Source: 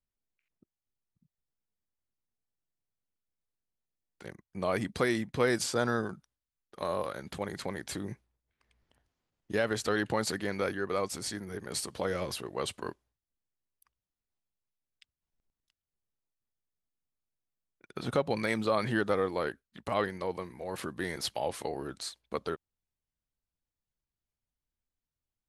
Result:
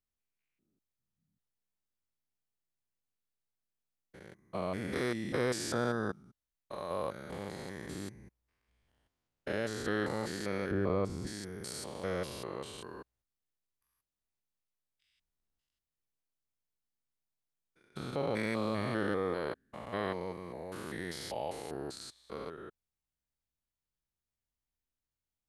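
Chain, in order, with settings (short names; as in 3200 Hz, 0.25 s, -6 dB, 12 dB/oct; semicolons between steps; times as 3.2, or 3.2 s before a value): stepped spectrum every 0.2 s; 10.71–11.27 tilt -3.5 dB/oct; gain -1 dB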